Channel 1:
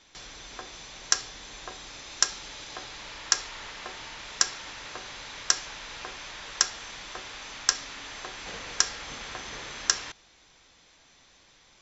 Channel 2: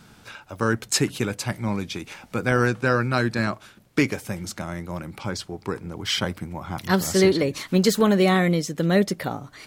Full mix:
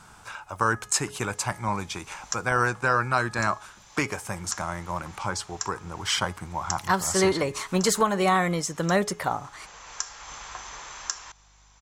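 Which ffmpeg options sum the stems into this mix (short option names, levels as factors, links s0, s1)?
-filter_complex "[0:a]aeval=exprs='val(0)+0.00178*(sin(2*PI*50*n/s)+sin(2*PI*2*50*n/s)/2+sin(2*PI*3*50*n/s)/3+sin(2*PI*4*50*n/s)/4+sin(2*PI*5*50*n/s)/5)':c=same,adelay=1200,volume=0.841[s0];[1:a]highshelf=f=9000:g=-11.5,bandreject=f=419.4:t=h:w=4,bandreject=f=838.8:t=h:w=4,bandreject=f=1258.2:t=h:w=4,bandreject=f=1677.6:t=h:w=4,bandreject=f=2097:t=h:w=4,bandreject=f=2516.4:t=h:w=4,bandreject=f=2935.8:t=h:w=4,bandreject=f=3355.2:t=h:w=4,bandreject=f=3774.6:t=h:w=4,bandreject=f=4194:t=h:w=4,bandreject=f=4613.4:t=h:w=4,bandreject=f=5032.8:t=h:w=4,bandreject=f=5452.2:t=h:w=4,bandreject=f=5871.6:t=h:w=4,bandreject=f=6291:t=h:w=4,bandreject=f=6710.4:t=h:w=4,volume=1.33,asplit=2[s1][s2];[s2]apad=whole_len=573780[s3];[s0][s3]sidechaincompress=threshold=0.0224:ratio=6:attack=12:release=692[s4];[s4][s1]amix=inputs=2:normalize=0,equalizer=f=125:t=o:w=1:g=-5,equalizer=f=250:t=o:w=1:g=-10,equalizer=f=500:t=o:w=1:g=-5,equalizer=f=1000:t=o:w=1:g=8,equalizer=f=2000:t=o:w=1:g=-3,equalizer=f=4000:t=o:w=1:g=-6,equalizer=f=8000:t=o:w=1:g=9,alimiter=limit=0.299:level=0:latency=1:release=328"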